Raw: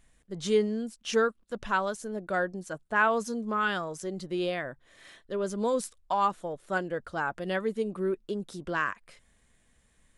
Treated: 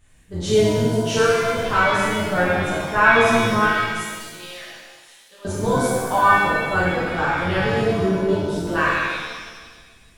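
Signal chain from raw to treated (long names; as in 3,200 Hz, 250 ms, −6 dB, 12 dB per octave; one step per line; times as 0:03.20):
sub-octave generator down 1 octave, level −3 dB
0:03.66–0:05.45: first-order pre-emphasis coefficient 0.97
reverb with rising layers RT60 1.5 s, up +7 semitones, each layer −8 dB, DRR −10 dB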